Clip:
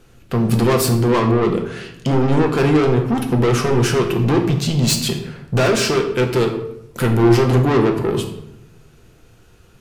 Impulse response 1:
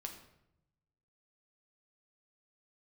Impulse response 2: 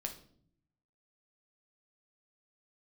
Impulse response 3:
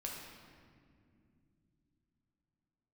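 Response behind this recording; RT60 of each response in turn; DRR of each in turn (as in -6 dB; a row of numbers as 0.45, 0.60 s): 1; 0.80, 0.60, 2.3 s; 3.0, 3.0, -2.5 dB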